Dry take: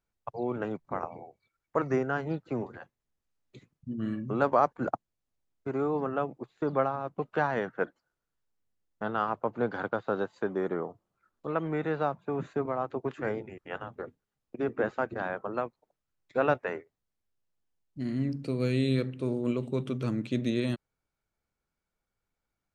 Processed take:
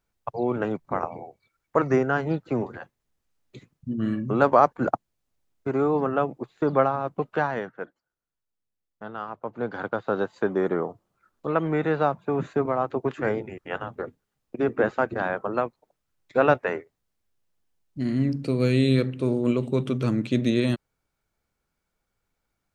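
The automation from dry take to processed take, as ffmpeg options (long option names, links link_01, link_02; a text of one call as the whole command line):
ffmpeg -i in.wav -af "volume=18dB,afade=type=out:start_time=7.09:duration=0.72:silence=0.266073,afade=type=in:start_time=9.33:duration=1.12:silence=0.266073" out.wav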